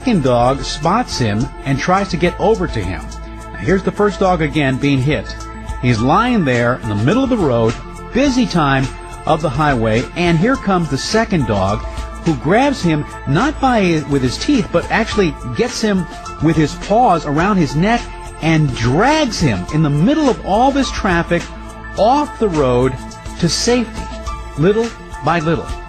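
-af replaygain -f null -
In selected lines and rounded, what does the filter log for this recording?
track_gain = -3.9 dB
track_peak = 0.584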